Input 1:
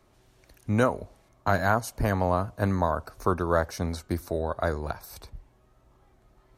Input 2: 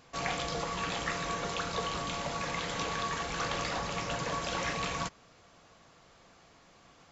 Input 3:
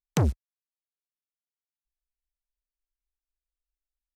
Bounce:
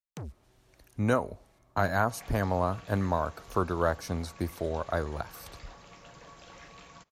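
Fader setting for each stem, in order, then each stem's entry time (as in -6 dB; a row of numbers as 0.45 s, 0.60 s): -3.0 dB, -17.0 dB, -17.5 dB; 0.30 s, 1.95 s, 0.00 s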